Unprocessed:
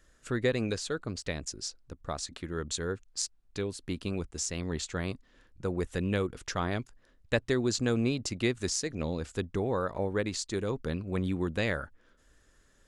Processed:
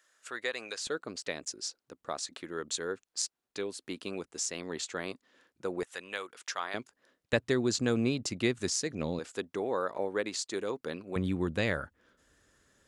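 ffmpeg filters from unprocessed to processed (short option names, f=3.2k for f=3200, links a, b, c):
-af "asetnsamples=n=441:p=0,asendcmd='0.87 highpass f 310;5.83 highpass f 860;6.74 highpass f 290;7.33 highpass f 120;9.19 highpass f 320;11.16 highpass f 77',highpass=790"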